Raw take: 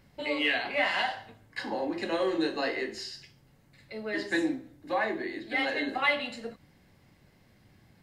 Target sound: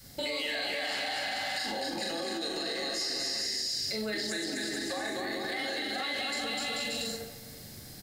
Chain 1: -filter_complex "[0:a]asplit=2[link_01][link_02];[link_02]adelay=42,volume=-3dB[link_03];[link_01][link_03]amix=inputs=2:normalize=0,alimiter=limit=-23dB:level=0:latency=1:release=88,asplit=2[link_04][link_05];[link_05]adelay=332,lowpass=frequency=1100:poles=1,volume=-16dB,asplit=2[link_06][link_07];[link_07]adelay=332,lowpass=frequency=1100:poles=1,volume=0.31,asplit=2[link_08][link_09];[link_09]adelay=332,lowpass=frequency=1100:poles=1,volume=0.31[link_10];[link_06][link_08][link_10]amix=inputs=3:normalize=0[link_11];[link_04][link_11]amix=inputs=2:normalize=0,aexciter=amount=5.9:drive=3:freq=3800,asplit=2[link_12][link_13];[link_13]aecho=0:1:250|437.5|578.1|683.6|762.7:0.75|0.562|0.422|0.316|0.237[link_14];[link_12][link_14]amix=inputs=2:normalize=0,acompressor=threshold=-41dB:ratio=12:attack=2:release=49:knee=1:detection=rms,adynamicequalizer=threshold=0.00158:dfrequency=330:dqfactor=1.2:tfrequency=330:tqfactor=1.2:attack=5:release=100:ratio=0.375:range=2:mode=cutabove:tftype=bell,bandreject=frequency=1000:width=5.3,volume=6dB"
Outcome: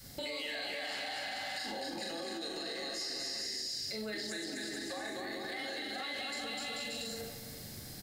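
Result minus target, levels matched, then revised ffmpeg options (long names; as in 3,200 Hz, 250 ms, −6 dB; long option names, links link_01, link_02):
downward compressor: peak gain reduction +6 dB
-filter_complex "[0:a]asplit=2[link_01][link_02];[link_02]adelay=42,volume=-3dB[link_03];[link_01][link_03]amix=inputs=2:normalize=0,alimiter=limit=-23dB:level=0:latency=1:release=88,asplit=2[link_04][link_05];[link_05]adelay=332,lowpass=frequency=1100:poles=1,volume=-16dB,asplit=2[link_06][link_07];[link_07]adelay=332,lowpass=frequency=1100:poles=1,volume=0.31,asplit=2[link_08][link_09];[link_09]adelay=332,lowpass=frequency=1100:poles=1,volume=0.31[link_10];[link_06][link_08][link_10]amix=inputs=3:normalize=0[link_11];[link_04][link_11]amix=inputs=2:normalize=0,aexciter=amount=5.9:drive=3:freq=3800,asplit=2[link_12][link_13];[link_13]aecho=0:1:250|437.5|578.1|683.6|762.7:0.75|0.562|0.422|0.316|0.237[link_14];[link_12][link_14]amix=inputs=2:normalize=0,acompressor=threshold=-34.5dB:ratio=12:attack=2:release=49:knee=1:detection=rms,adynamicequalizer=threshold=0.00158:dfrequency=330:dqfactor=1.2:tfrequency=330:tqfactor=1.2:attack=5:release=100:ratio=0.375:range=2:mode=cutabove:tftype=bell,bandreject=frequency=1000:width=5.3,volume=6dB"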